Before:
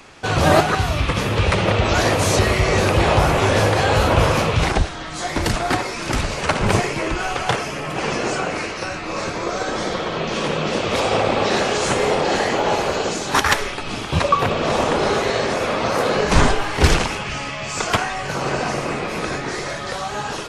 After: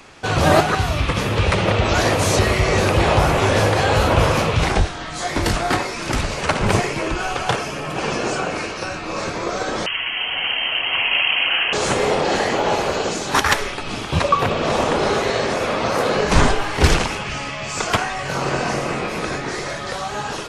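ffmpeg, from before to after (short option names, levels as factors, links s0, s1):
-filter_complex "[0:a]asettb=1/sr,asplit=3[s0][s1][s2];[s0]atrim=end=4.694[s3];[s1]atrim=start=4.69:end=5.86,asetpts=PTS-STARTPTS,afade=t=in:d=0.004:c=qsin,afade=t=out:st=1.166:d=0.004:c=qsin,asplit=2[s4][s5];[s5]adelay=21,volume=0.447[s6];[s4][s6]amix=inputs=2:normalize=0,atrim=end_sample=51597[s7];[s2]atrim=start=5.856[s8];[s3][s7]acrossfade=d=0.004:c1=hsin:c2=qsin[s9];[s9][s8]acrossfade=d=0.004:c1=qsin:c2=hsin,asettb=1/sr,asplit=3[s10][s11][s12];[s10]atrim=end=6.994[s13];[s11]atrim=start=6.99:end=9.21,asetpts=PTS-STARTPTS,afade=t=in:d=0.004:c=qsin,afade=t=out:st=2.216:d=0.004:c=qsin,bandreject=f=2000:w=12[s14];[s12]atrim=start=9.206[s15];[s13][s14]acrossfade=d=0.004:c1=hsin:c2=qsin[s16];[s16][s15]acrossfade=d=0.004:c1=qsin:c2=hsin,asettb=1/sr,asplit=3[s17][s18][s19];[s17]atrim=end=9.864[s20];[s18]atrim=start=9.86:end=11.73,asetpts=PTS-STARTPTS,afade=t=in:d=0.004:c=qsin,afade=t=out:st=1.866:d=0.004:c=qsin,lowpass=f=2800:t=q:w=0.5098,lowpass=f=2800:t=q:w=0.6013,lowpass=f=2800:t=q:w=0.9,lowpass=f=2800:t=q:w=2.563,afreqshift=-3300[s21];[s19]atrim=start=11.726[s22];[s20][s21]acrossfade=d=0.004:c1=hsin:c2=qsin[s23];[s23][s22]acrossfade=d=0.004:c1=qsin:c2=hsin,asettb=1/sr,asplit=3[s24][s25][s26];[s24]atrim=end=18.164[s27];[s25]atrim=start=18.16:end=19.09,asetpts=PTS-STARTPTS,afade=t=in:d=0.004:c=qsin,afade=t=out:st=0.926:d=0.004:c=qsin,asplit=2[s28][s29];[s29]adelay=23,volume=0.473[s30];[s28][s30]amix=inputs=2:normalize=0,atrim=end_sample=41013[s31];[s26]atrim=start=19.086[s32];[s27][s31]acrossfade=d=0.004:c1=hsin:c2=qsin[s33];[s33][s32]acrossfade=d=0.004:c1=qsin:c2=hsin"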